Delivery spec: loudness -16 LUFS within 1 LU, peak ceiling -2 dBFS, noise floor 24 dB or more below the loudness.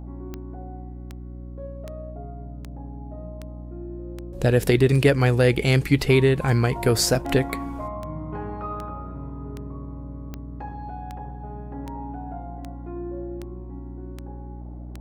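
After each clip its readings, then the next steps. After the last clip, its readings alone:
clicks 20; hum 60 Hz; harmonics up to 300 Hz; hum level -35 dBFS; loudness -23.0 LUFS; peak -5.0 dBFS; loudness target -16.0 LUFS
-> de-click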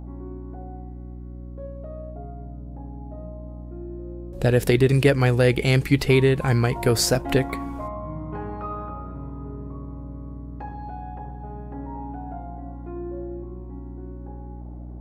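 clicks 0; hum 60 Hz; harmonics up to 300 Hz; hum level -35 dBFS
-> de-hum 60 Hz, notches 5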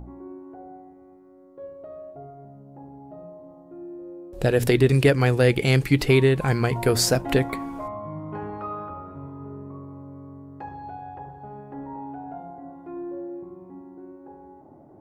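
hum none; loudness -22.5 LUFS; peak -5.5 dBFS; loudness target -16.0 LUFS
-> gain +6.5 dB; limiter -2 dBFS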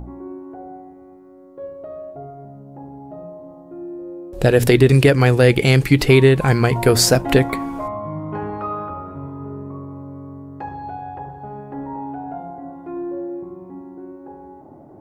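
loudness -16.5 LUFS; peak -2.0 dBFS; noise floor -44 dBFS

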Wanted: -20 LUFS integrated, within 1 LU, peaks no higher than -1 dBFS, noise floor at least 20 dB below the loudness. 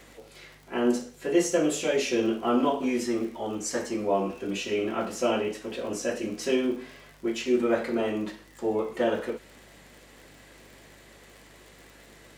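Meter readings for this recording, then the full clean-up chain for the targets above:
ticks 56/s; hum 50 Hz; harmonics up to 150 Hz; hum level -57 dBFS; loudness -28.0 LUFS; peak -11.0 dBFS; loudness target -20.0 LUFS
-> de-click; de-hum 50 Hz, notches 3; gain +8 dB

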